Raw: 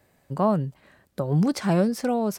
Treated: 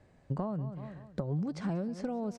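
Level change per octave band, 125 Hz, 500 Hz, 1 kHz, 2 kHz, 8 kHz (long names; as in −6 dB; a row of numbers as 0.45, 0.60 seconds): −9.0 dB, −13.0 dB, −14.5 dB, −14.0 dB, below −15 dB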